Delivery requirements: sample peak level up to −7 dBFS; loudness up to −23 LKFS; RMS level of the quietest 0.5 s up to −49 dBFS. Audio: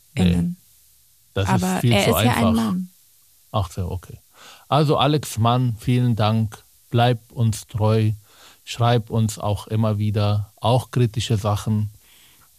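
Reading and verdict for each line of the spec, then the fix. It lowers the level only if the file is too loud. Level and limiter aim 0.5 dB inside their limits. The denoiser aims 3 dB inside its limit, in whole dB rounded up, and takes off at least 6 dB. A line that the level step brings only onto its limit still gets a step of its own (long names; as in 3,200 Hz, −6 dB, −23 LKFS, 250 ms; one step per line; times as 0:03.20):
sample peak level −4.0 dBFS: out of spec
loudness −21.0 LKFS: out of spec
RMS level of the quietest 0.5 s −55 dBFS: in spec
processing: level −2.5 dB
brickwall limiter −7.5 dBFS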